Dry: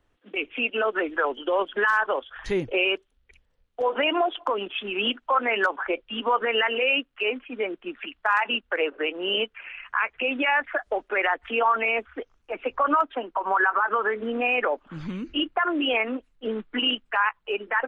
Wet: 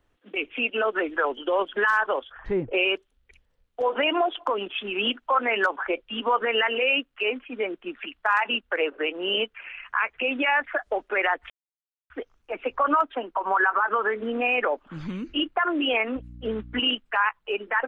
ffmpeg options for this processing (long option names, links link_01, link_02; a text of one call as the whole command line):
ffmpeg -i in.wav -filter_complex "[0:a]asettb=1/sr,asplit=3[link_01][link_02][link_03];[link_01]atrim=end=2.324[link_04];[link_02]atrim=start=2.32:end=2.73,asetpts=PTS-STARTPTS,afade=type=in:duration=0.004:curve=qsin,afade=type=out:start_time=0.406:duration=0.004:curve=qsin,lowpass=1400[link_05];[link_03]atrim=start=2.726[link_06];[link_04][link_05]acrossfade=duration=0.004:curve1=hsin:curve2=qsin[link_07];[link_07][link_06]acrossfade=duration=0.004:curve1=qsin:curve2=hsin,asettb=1/sr,asplit=3[link_08][link_09][link_10];[link_08]atrim=end=16.164[link_11];[link_09]atrim=start=16.16:end=16.8,asetpts=PTS-STARTPTS,afade=type=in:duration=0.004:curve=qsin,afade=type=out:start_time=0.636:duration=0.004:curve=qsin,aeval=exprs='val(0)+0.00891*(sin(2*PI*60*n/s)+sin(2*PI*2*60*n/s)/2+sin(2*PI*3*60*n/s)/3+sin(2*PI*4*60*n/s)/4+sin(2*PI*5*60*n/s)/5)':channel_layout=same[link_12];[link_10]atrim=start=16.796[link_13];[link_11][link_12]acrossfade=duration=0.004:curve1=hsin:curve2=qsin[link_14];[link_14][link_13]acrossfade=duration=0.004:curve1=qsin:curve2=hsin,asplit=3[link_15][link_16][link_17];[link_15]atrim=end=11.5,asetpts=PTS-STARTPTS,afade=type=out:start_time=11.496:duration=0.004:curve=hsin[link_18];[link_16]atrim=start=11.5:end=12.1,asetpts=PTS-STARTPTS,volume=0[link_19];[link_17]atrim=start=12.1,asetpts=PTS-STARTPTS,afade=type=in:duration=0.004:curve=hsin[link_20];[link_18][link_19][link_20]concat=n=3:v=0:a=1" out.wav